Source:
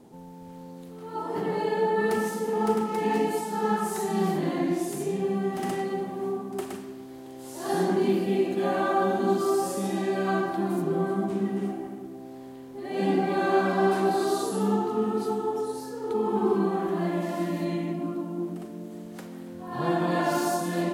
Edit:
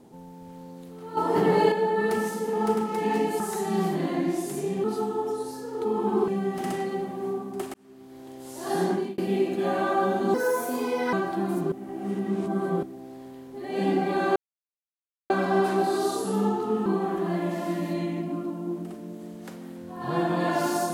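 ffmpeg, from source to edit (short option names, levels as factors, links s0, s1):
-filter_complex "[0:a]asplit=14[s0][s1][s2][s3][s4][s5][s6][s7][s8][s9][s10][s11][s12][s13];[s0]atrim=end=1.172[s14];[s1]atrim=start=1.168:end=1.722,asetpts=PTS-STARTPTS,volume=2.37[s15];[s2]atrim=start=1.718:end=3.402[s16];[s3]atrim=start=3.828:end=5.272[s17];[s4]atrim=start=15.128:end=16.572[s18];[s5]atrim=start=5.268:end=6.73,asetpts=PTS-STARTPTS,afade=t=out:st=1.458:d=0.004:c=hsin[s19];[s6]atrim=start=6.73:end=8.17,asetpts=PTS-STARTPTS,afade=t=in:d=0.54,afade=t=out:st=1.16:d=0.28[s20];[s7]atrim=start=8.17:end=9.334,asetpts=PTS-STARTPTS,afade=t=in:d=0.004:c=hsin[s21];[s8]atrim=start=9.33:end=10.34,asetpts=PTS-STARTPTS,asetrate=56448,aresample=44100[s22];[s9]atrim=start=10.336:end=10.932[s23];[s10]atrim=start=10.928:end=12.042,asetpts=PTS-STARTPTS,areverse[s24];[s11]atrim=start=12.038:end=13.57,asetpts=PTS-STARTPTS,afade=t=out:st=1.528:d=0.004:c=hsin,apad=pad_dur=0.94[s25];[s12]atrim=start=13.57:end=15.132,asetpts=PTS-STARTPTS,afade=t=in:d=0.004:c=hsin[s26];[s13]atrim=start=16.568[s27];[s14][s15]acrossfade=d=0.004:c1=hsin:c2=hsin[s28];[s28][s16]acrossfade=d=0.004:c1=hsin:c2=hsin[s29];[s29][s17]acrossfade=d=0.004:c1=hsin:c2=hsin[s30];[s30][s18]acrossfade=d=0.004:c1=hsin:c2=hsin[s31];[s19][s20][s21]concat=n=3:v=0:a=1[s32];[s31][s32]acrossfade=d=0.004:c1=hsin:c2=hsin[s33];[s33][s22]acrossfade=d=0.004:c1=hsin:c2=hsin[s34];[s34][s23]acrossfade=d=0.004:c1=hsin:c2=hsin[s35];[s35][s24]acrossfade=d=0.004:c1=hsin:c2=hsin[s36];[s25][s26]concat=n=2:v=0:a=1[s37];[s36][s37]acrossfade=d=0.004:c1=hsin:c2=hsin[s38];[s38][s27]acrossfade=d=0.004:c1=hsin:c2=hsin"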